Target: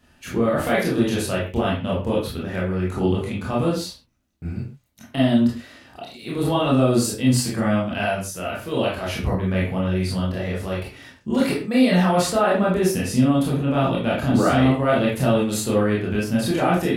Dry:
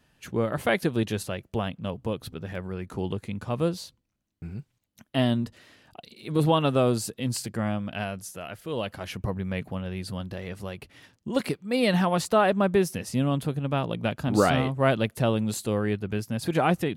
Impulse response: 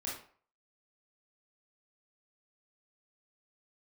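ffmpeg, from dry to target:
-filter_complex "[0:a]alimiter=limit=-19.5dB:level=0:latency=1:release=14[link_01];[1:a]atrim=start_sample=2205,afade=type=out:start_time=0.22:duration=0.01,atrim=end_sample=10143[link_02];[link_01][link_02]afir=irnorm=-1:irlink=0,volume=8dB"

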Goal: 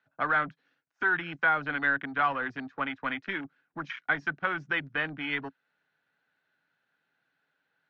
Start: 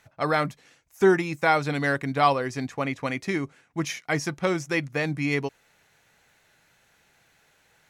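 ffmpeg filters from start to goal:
ffmpeg -i in.wav -filter_complex "[0:a]afwtdn=0.0178,highpass=frequency=100:width=0.5412,highpass=frequency=100:width=1.3066,equalizer=frequency=160:width_type=q:width=4:gain=5,equalizer=frequency=270:width_type=q:width=4:gain=9,equalizer=frequency=1500:width_type=q:width=4:gain=10,equalizer=frequency=2200:width_type=q:width=4:gain=-4,lowpass=frequency=4200:width=0.5412,lowpass=frequency=4200:width=1.3066,acrossover=split=190|860[link_01][link_02][link_03];[link_01]acompressor=threshold=-39dB:ratio=4[link_04];[link_02]acompressor=threshold=-34dB:ratio=4[link_05];[link_03]acompressor=threshold=-23dB:ratio=4[link_06];[link_04][link_05][link_06]amix=inputs=3:normalize=0,lowshelf=frequency=160:gain=-9.5,acrossover=split=660[link_07][link_08];[link_07]asoftclip=type=tanh:threshold=-36.5dB[link_09];[link_09][link_08]amix=inputs=2:normalize=0" -ar 44100 -c:a libvorbis -b:a 128k out.ogg

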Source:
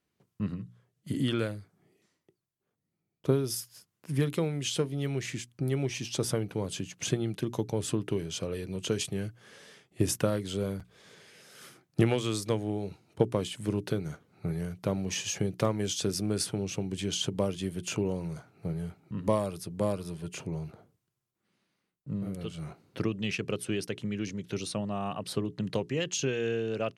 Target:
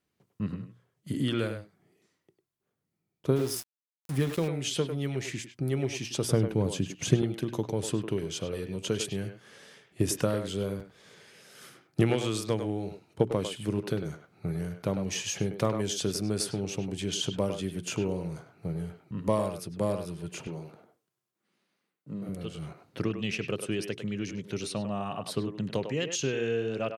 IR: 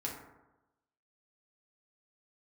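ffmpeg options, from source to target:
-filter_complex "[0:a]asettb=1/sr,asplit=3[link_01][link_02][link_03];[link_01]atrim=end=6.314[link_04];[link_02]atrim=start=6.31:end=7.22,asetpts=PTS-STARTPTS,afade=type=in:duration=0.004:curve=qsin,afade=type=out:start_time=0.906:duration=0.004:curve=qsin,lowshelf=frequency=410:gain=8[link_05];[link_03]atrim=start=7.216[link_06];[link_04][link_05]acrossfade=duration=0.004:curve1=hsin:curve2=qsin[link_07];[link_07][link_06]acrossfade=duration=0.004:curve1=qsin:curve2=hsin,asplit=2[link_08][link_09];[link_09]adelay=100,highpass=300,lowpass=3400,asoftclip=type=hard:threshold=-17dB,volume=-7dB[link_10];[link_08][link_10]amix=inputs=2:normalize=0,asettb=1/sr,asplit=3[link_11][link_12][link_13];[link_11]atrim=end=3.364[link_14];[link_12]atrim=start=3.36:end=4.48,asetpts=PTS-STARTPTS,afade=type=in:duration=0.004:curve=qsin,afade=type=out:start_time=1.116:duration=0.004:curve=qsin,aeval=exprs='val(0)*gte(abs(val(0)),0.0141)':channel_layout=same[link_15];[link_13]atrim=start=4.476[link_16];[link_14][link_15]acrossfade=duration=0.004:curve1=hsin:curve2=qsin[link_17];[link_17][link_16]acrossfade=duration=0.004:curve1=qsin:curve2=hsin,asettb=1/sr,asplit=3[link_18][link_19][link_20];[link_18]atrim=end=20.474[link_21];[link_19]atrim=start=20.47:end=22.29,asetpts=PTS-STARTPTS,afade=type=in:duration=0.004:curve=qsin,afade=type=out:start_time=1.816:duration=0.004:curve=qsin,highpass=190[link_22];[link_20]atrim=start=22.286[link_23];[link_21][link_22]acrossfade=duration=0.004:curve1=hsin:curve2=qsin[link_24];[link_24][link_23]acrossfade=duration=0.004:curve1=qsin:curve2=hsin"

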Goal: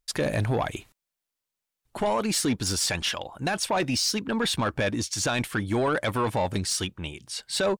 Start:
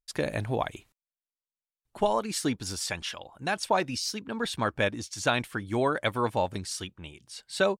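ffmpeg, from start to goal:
ffmpeg -i in.wav -af "alimiter=limit=-23dB:level=0:latency=1:release=11,asoftclip=type=tanh:threshold=-27dB,volume=9dB" out.wav

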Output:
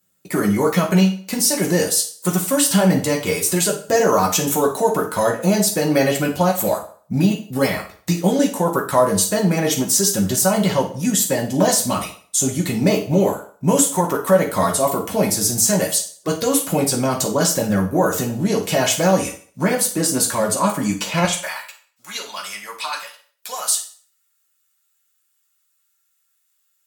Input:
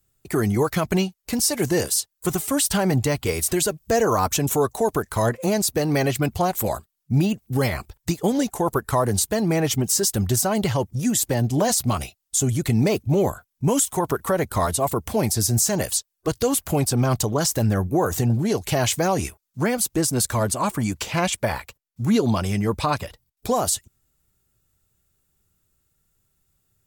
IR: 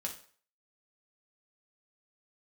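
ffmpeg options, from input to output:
-filter_complex "[0:a]asetnsamples=nb_out_samples=441:pad=0,asendcmd='21.25 highpass f 1400',highpass=170[link_01];[1:a]atrim=start_sample=2205[link_02];[link_01][link_02]afir=irnorm=-1:irlink=0,volume=4.5dB"

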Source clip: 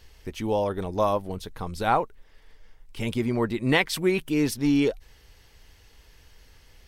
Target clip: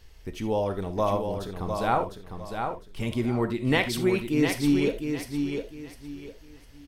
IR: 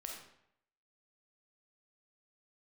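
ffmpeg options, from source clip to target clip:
-filter_complex "[0:a]lowshelf=frequency=340:gain=3.5,aecho=1:1:704|1408|2112|2816:0.501|0.14|0.0393|0.011,asplit=2[link_01][link_02];[1:a]atrim=start_sample=2205,atrim=end_sample=3969[link_03];[link_02][link_03]afir=irnorm=-1:irlink=0,volume=2.5dB[link_04];[link_01][link_04]amix=inputs=2:normalize=0,volume=-8dB"

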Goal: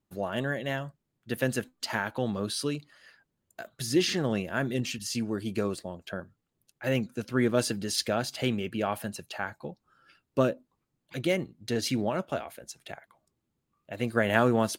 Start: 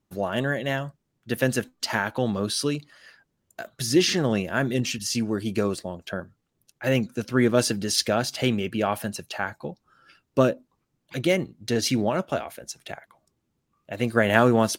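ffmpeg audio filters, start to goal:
ffmpeg -i in.wav -af "equalizer=frequency=5700:width=6.6:gain=-4.5,volume=-5dB" out.wav

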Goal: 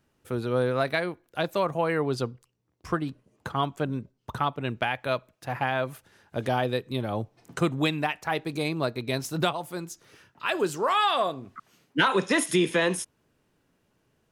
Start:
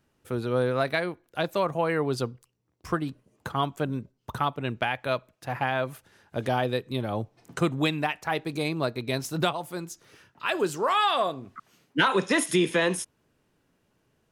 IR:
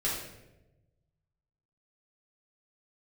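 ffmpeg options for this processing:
-filter_complex "[0:a]asettb=1/sr,asplit=3[link_01][link_02][link_03];[link_01]atrim=end=2.024[link_04];[link_02]atrim=start=2.02:end=4.61,asetpts=PTS-STARTPTS,afade=type=in:duration=0.004:curve=qsin,afade=type=out:start_time=2.586:duration=0.004:curve=qsin,highshelf=frequency=11000:gain=-8.5[link_05];[link_03]atrim=start=4.606[link_06];[link_04][link_05]acrossfade=duration=0.004:curve1=hsin:curve2=qsin[link_07];[link_07][link_06]acrossfade=duration=0.004:curve1=qsin:curve2=hsin"

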